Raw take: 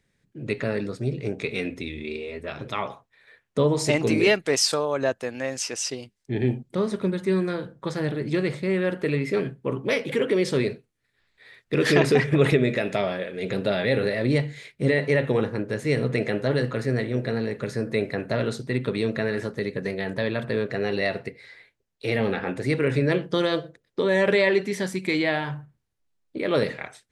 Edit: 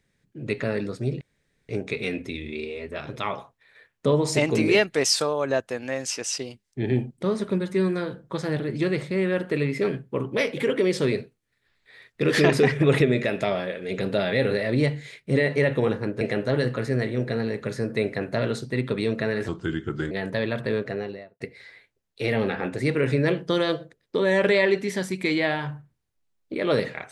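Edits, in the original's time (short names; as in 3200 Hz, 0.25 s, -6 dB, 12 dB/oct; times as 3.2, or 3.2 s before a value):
1.21 insert room tone 0.48 s
15.73–16.18 cut
19.45–19.95 speed 79%
20.56–21.24 studio fade out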